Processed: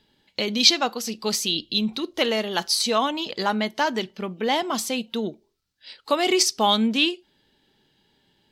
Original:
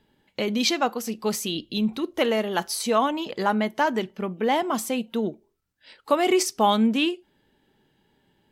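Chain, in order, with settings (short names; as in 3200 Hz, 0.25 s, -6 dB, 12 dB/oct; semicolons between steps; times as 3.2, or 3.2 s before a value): bell 4400 Hz +12 dB 1.3 oct; gain -1.5 dB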